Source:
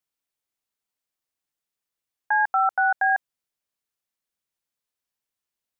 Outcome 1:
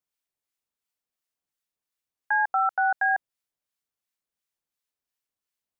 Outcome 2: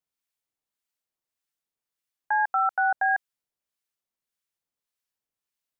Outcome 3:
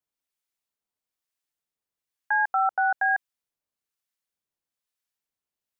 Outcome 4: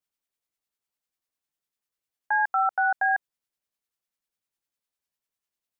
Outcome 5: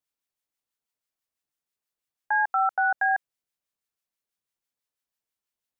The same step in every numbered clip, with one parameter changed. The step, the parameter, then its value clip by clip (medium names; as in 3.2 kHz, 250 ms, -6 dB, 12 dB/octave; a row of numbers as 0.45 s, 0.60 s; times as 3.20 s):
harmonic tremolo, rate: 2.8 Hz, 1.7 Hz, 1.1 Hz, 10 Hz, 6.1 Hz